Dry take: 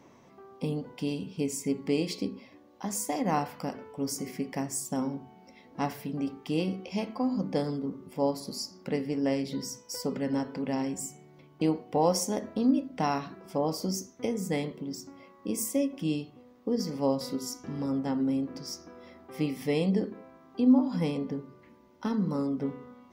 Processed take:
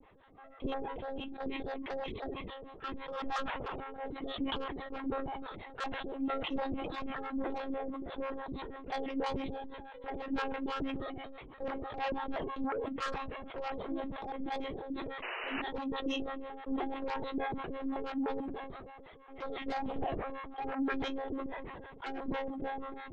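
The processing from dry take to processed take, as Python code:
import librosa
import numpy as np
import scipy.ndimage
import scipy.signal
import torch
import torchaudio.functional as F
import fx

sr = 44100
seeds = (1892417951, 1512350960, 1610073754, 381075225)

p1 = fx.pitch_trill(x, sr, semitones=9.0, every_ms=146)
p2 = scipy.signal.sosfilt(scipy.signal.cheby1(8, 1.0, 170.0, 'highpass', fs=sr, output='sos'), p1)
p3 = fx.low_shelf(p2, sr, hz=310.0, db=-2.5)
p4 = fx.lpc_monotone(p3, sr, seeds[0], pitch_hz=270.0, order=16)
p5 = fx.fold_sine(p4, sr, drive_db=14, ceiling_db=-13.5)
p6 = p4 + F.gain(torch.from_numpy(p5), -11.5).numpy()
p7 = fx.harmonic_tremolo(p6, sr, hz=6.1, depth_pct=100, crossover_hz=560.0)
p8 = fx.spec_paint(p7, sr, seeds[1], shape='noise', start_s=15.22, length_s=0.4, low_hz=340.0, high_hz=3000.0, level_db=-32.0)
p9 = fx.sustainer(p8, sr, db_per_s=27.0)
y = F.gain(torch.from_numpy(p9), -8.0).numpy()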